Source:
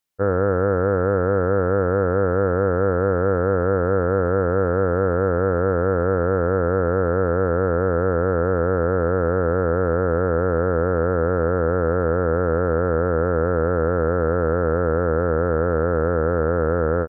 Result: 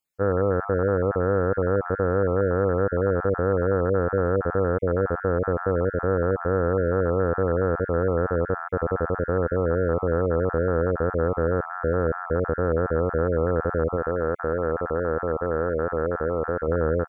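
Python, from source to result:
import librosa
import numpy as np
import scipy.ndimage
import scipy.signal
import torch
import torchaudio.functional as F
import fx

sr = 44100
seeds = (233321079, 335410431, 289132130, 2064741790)

y = fx.spec_dropout(x, sr, seeds[0], share_pct=23)
y = fx.low_shelf(y, sr, hz=240.0, db=-7.0, at=(13.96, 16.68))
y = F.gain(torch.from_numpy(y), -2.5).numpy()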